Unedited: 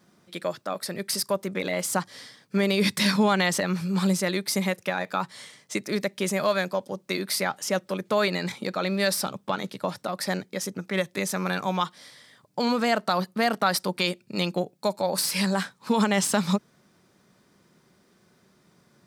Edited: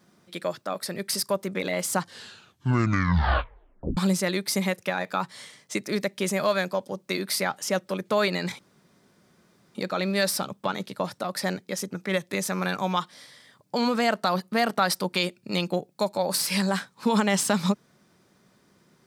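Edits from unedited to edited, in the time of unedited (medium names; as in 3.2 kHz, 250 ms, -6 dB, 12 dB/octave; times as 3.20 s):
1.98 s: tape stop 1.99 s
8.59 s: insert room tone 1.16 s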